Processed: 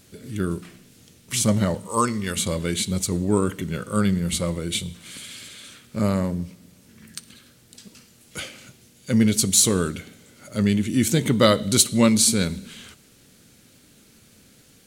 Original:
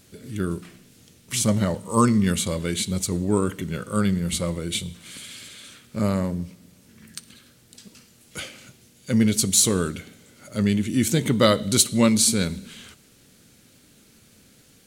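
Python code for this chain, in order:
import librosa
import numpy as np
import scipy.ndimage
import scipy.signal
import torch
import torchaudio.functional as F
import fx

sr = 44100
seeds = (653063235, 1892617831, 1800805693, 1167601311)

y = fx.peak_eq(x, sr, hz=160.0, db=-11.5, octaves=1.9, at=(1.87, 2.37))
y = y * librosa.db_to_amplitude(1.0)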